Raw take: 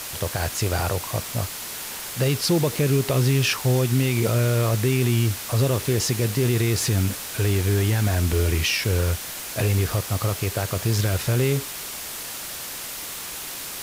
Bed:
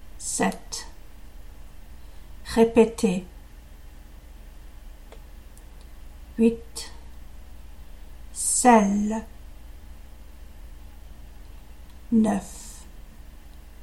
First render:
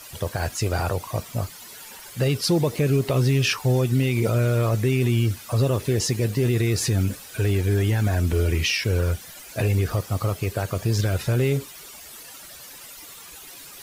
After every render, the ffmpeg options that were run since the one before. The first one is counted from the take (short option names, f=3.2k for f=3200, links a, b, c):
-af "afftdn=nr=13:nf=-34"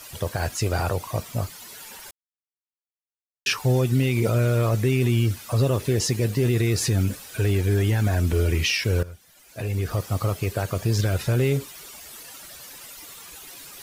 -filter_complex "[0:a]asplit=4[a][b][c][d];[a]atrim=end=2.11,asetpts=PTS-STARTPTS,afade=t=out:st=2.106:d=0.004:c=hsin[e];[b]atrim=start=2.11:end=3.46,asetpts=PTS-STARTPTS,volume=0[f];[c]atrim=start=3.46:end=9.03,asetpts=PTS-STARTPTS,afade=t=in:d=0.004:c=hsin,afade=t=out:st=5.566:d=0.004:c=hsin:silence=0.141254[g];[d]atrim=start=9.03,asetpts=PTS-STARTPTS,afade=t=in:d=1.01:c=qua:silence=0.141254[h];[e][f][g][h]concat=n=4:v=0:a=1"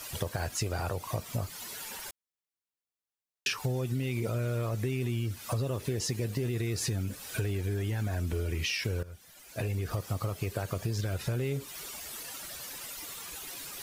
-af "acompressor=threshold=-29dB:ratio=6"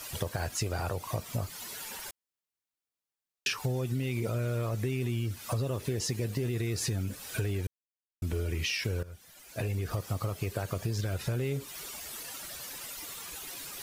-filter_complex "[0:a]asplit=3[a][b][c];[a]atrim=end=7.67,asetpts=PTS-STARTPTS,afade=t=out:st=7.666:d=0.004:c=hsin[d];[b]atrim=start=7.67:end=8.22,asetpts=PTS-STARTPTS,volume=0[e];[c]atrim=start=8.22,asetpts=PTS-STARTPTS,afade=t=in:d=0.004:c=hsin[f];[d][e][f]concat=n=3:v=0:a=1"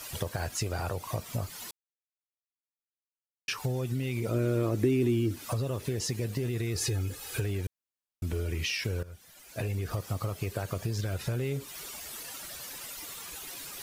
-filter_complex "[0:a]asettb=1/sr,asplit=3[a][b][c];[a]atrim=end=4.314[d];[b]atrim=start=4.31:end=5.45,asetpts=PTS-STARTPTS,afade=t=in:d=0.004:c=qsin,afade=t=out:st=1.136:d=0.004:c=qsin,equalizer=f=310:t=o:w=0.77:g=15[e];[c]atrim=start=5.446[f];[d][e]acrossfade=d=0.004:c1=hsin:c2=qsin[g];[g][f]acrossfade=d=0.004:c1=qsin:c2=hsin,asettb=1/sr,asplit=3[h][i][j];[h]atrim=end=6.754[k];[i]atrim=start=6.75:end=7.4,asetpts=PTS-STARTPTS,afade=t=in:d=0.004:c=qsin,afade=t=out:st=0.646:d=0.004:c=qsin,aecho=1:1:2.4:0.7,atrim=end_sample=28665[l];[j]atrim=start=7.396[m];[k][l]acrossfade=d=0.004:c1=hsin:c2=qsin[n];[n][m]acrossfade=d=0.004:c1=qsin:c2=hsin,asplit=3[o][p][q];[o]atrim=end=1.71,asetpts=PTS-STARTPTS,afade=t=out:st=1.706:d=0.004:c=hsin[r];[p]atrim=start=1.71:end=3.48,asetpts=PTS-STARTPTS,volume=0[s];[q]atrim=start=3.48,asetpts=PTS-STARTPTS,afade=t=in:d=0.004:c=hsin[t];[r][s][t]concat=n=3:v=0:a=1"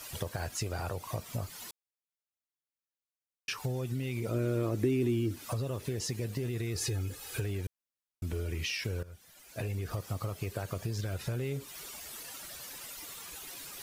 -af "volume=-3dB"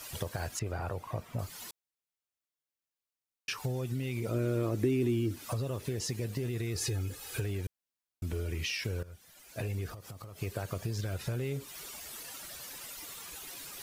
-filter_complex "[0:a]asettb=1/sr,asplit=3[a][b][c];[a]atrim=end=0.594[d];[b]atrim=start=0.59:end=1.39,asetpts=PTS-STARTPTS,afade=t=in:d=0.004:c=qsin,afade=t=out:st=0.796:d=0.004:c=qsin,acrossover=split=2600[e][f];[f]acompressor=threshold=-60dB:ratio=4:attack=1:release=60[g];[e][g]amix=inputs=2:normalize=0[h];[c]atrim=start=1.386[i];[d][h]acrossfade=d=0.004:c1=hsin:c2=qsin[j];[j][i]acrossfade=d=0.004:c1=qsin:c2=hsin,asettb=1/sr,asplit=3[k][l][m];[k]atrim=end=9.894[n];[l]atrim=start=9.89:end=10.39,asetpts=PTS-STARTPTS,afade=t=in:d=0.004:c=qsin,afade=t=out:st=0.496:d=0.004:c=qsin,acompressor=threshold=-41dB:ratio=12:attack=3.2:release=140:knee=1:detection=peak[o];[m]atrim=start=10.386[p];[n][o]acrossfade=d=0.004:c1=hsin:c2=qsin[q];[q][p]acrossfade=d=0.004:c1=qsin:c2=hsin"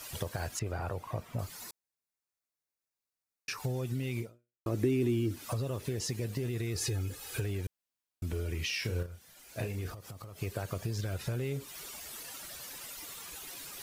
-filter_complex "[0:a]asettb=1/sr,asplit=3[a][b][c];[a]atrim=end=1.554[d];[b]atrim=start=1.55:end=3.6,asetpts=PTS-STARTPTS,afade=t=in:d=0.004:c=qsin,afade=t=out:st=2.046:d=0.004:c=qsin,equalizer=f=3.1k:w=5.6:g=-12[e];[c]atrim=start=3.596[f];[d][e]acrossfade=d=0.004:c1=hsin:c2=qsin[g];[g][f]acrossfade=d=0.004:c1=qsin:c2=hsin,asettb=1/sr,asplit=3[h][i][j];[h]atrim=end=8.694[k];[i]atrim=start=8.69:end=9.92,asetpts=PTS-STARTPTS,afade=t=in:d=0.004:c=qsin,afade=t=out:st=1.226:d=0.004:c=qsin,asplit=2[l][m];[m]adelay=34,volume=-7dB[n];[l][n]amix=inputs=2:normalize=0,atrim=end_sample=54243[o];[j]atrim=start=9.916[p];[k][o]acrossfade=d=0.004:c1=hsin:c2=qsin[q];[q][p]acrossfade=d=0.004:c1=qsin:c2=hsin,asplit=2[r][s];[r]atrim=end=4.66,asetpts=PTS-STARTPTS,afade=t=out:st=4.21:d=0.45:c=exp[t];[s]atrim=start=4.66,asetpts=PTS-STARTPTS,afade=t=in:d=0.004:c=hsin[u];[t][u]concat=n=2:v=0:a=1"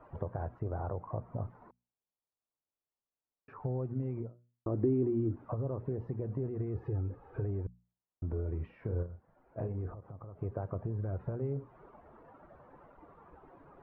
-af "lowpass=f=1.1k:w=0.5412,lowpass=f=1.1k:w=1.3066,bandreject=f=60:t=h:w=6,bandreject=f=120:t=h:w=6,bandreject=f=180:t=h:w=6,bandreject=f=240:t=h:w=6"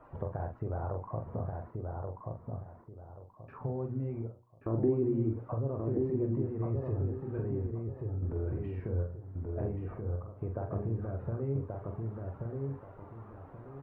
-filter_complex "[0:a]asplit=2[a][b];[b]adelay=44,volume=-6dB[c];[a][c]amix=inputs=2:normalize=0,asplit=2[d][e];[e]adelay=1131,lowpass=f=1.7k:p=1,volume=-3dB,asplit=2[f][g];[g]adelay=1131,lowpass=f=1.7k:p=1,volume=0.29,asplit=2[h][i];[i]adelay=1131,lowpass=f=1.7k:p=1,volume=0.29,asplit=2[j][k];[k]adelay=1131,lowpass=f=1.7k:p=1,volume=0.29[l];[f][h][j][l]amix=inputs=4:normalize=0[m];[d][m]amix=inputs=2:normalize=0"